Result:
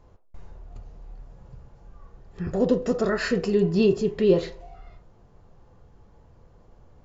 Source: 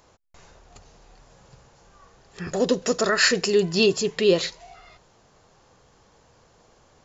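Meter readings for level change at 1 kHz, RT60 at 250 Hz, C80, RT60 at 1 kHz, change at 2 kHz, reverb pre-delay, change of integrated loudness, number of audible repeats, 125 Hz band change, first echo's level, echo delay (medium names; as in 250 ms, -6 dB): -5.0 dB, 0.60 s, 20.5 dB, 0.40 s, -9.0 dB, 6 ms, -2.0 dB, no echo, +4.0 dB, no echo, no echo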